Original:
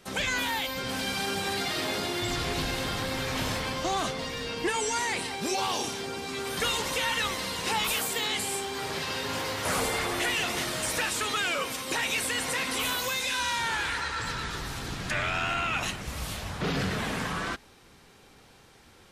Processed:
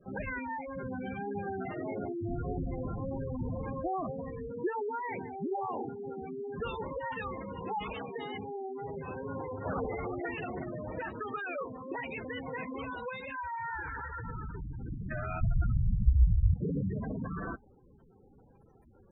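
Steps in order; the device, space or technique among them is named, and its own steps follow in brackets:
cassette deck with a dirty head (head-to-tape spacing loss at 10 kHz 42 dB; tape wow and flutter; white noise bed)
0:15.41–0:16.54: RIAA equalisation playback
gate on every frequency bin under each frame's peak −10 dB strong

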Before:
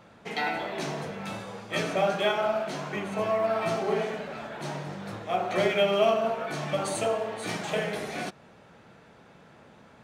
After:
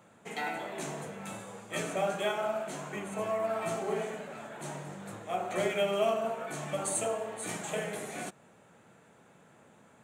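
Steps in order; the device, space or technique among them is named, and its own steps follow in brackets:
budget condenser microphone (high-pass filter 97 Hz; high shelf with overshoot 6,200 Hz +6.5 dB, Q 3)
level −5.5 dB

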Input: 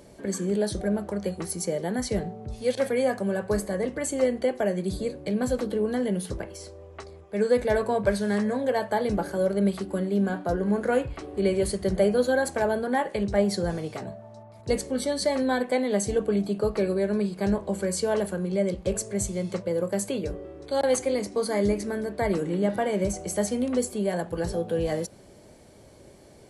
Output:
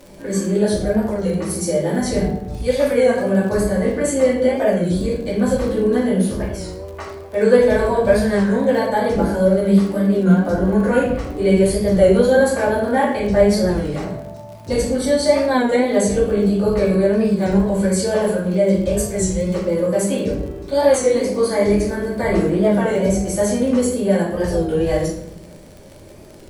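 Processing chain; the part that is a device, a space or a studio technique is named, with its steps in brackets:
0:06.54–0:07.59: parametric band 1,000 Hz +5 dB 2.6 octaves
rectangular room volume 160 cubic metres, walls mixed, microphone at 2.5 metres
warped LP (wow of a warped record 33 1/3 rpm, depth 100 cents; surface crackle 48 per second −31 dBFS; pink noise bed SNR 40 dB)
level −1 dB

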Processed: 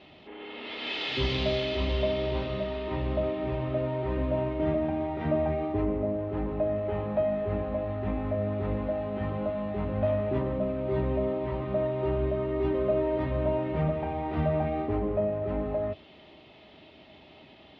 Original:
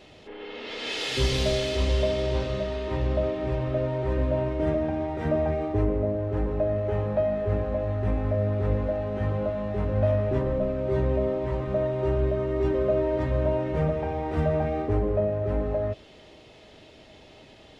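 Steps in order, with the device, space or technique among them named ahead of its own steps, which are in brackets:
guitar cabinet (loudspeaker in its box 79–3,800 Hz, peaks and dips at 110 Hz −8 dB, 480 Hz −9 dB, 1,600 Hz −5 dB)

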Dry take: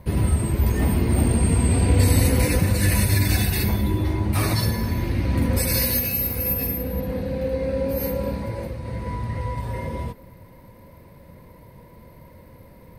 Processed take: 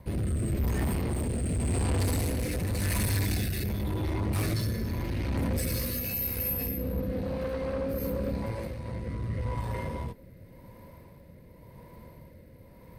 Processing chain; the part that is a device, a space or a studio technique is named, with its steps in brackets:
overdriven rotary cabinet (tube saturation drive 24 dB, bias 0.5; rotating-speaker cabinet horn 0.9 Hz)

